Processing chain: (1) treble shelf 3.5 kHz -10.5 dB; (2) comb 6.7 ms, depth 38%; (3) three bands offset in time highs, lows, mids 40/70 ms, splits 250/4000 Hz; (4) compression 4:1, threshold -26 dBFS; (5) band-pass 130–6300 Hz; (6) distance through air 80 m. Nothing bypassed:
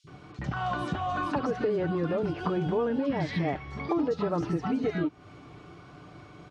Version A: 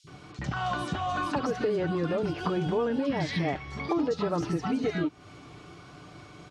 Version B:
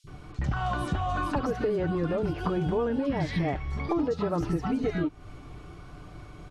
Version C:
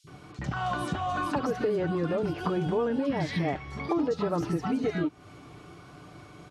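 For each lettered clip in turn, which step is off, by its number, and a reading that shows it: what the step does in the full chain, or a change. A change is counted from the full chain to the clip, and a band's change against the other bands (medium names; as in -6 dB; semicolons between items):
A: 1, 4 kHz band +5.0 dB; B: 5, 125 Hz band +3.0 dB; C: 6, 4 kHz band +2.0 dB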